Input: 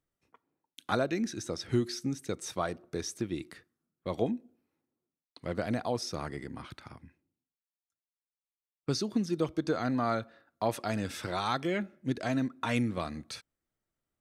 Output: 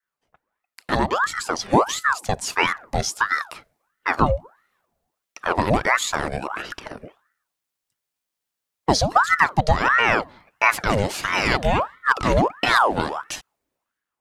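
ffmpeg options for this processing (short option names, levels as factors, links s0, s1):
-af "adynamicequalizer=threshold=0.00316:dfrequency=1600:dqfactor=1.3:tfrequency=1600:tqfactor=1.3:attack=5:release=100:ratio=0.375:range=2.5:mode=cutabove:tftype=bell,dynaudnorm=f=260:g=7:m=3.98,aeval=exprs='val(0)*sin(2*PI*980*n/s+980*0.7/1.5*sin(2*PI*1.5*n/s))':c=same,volume=1.5"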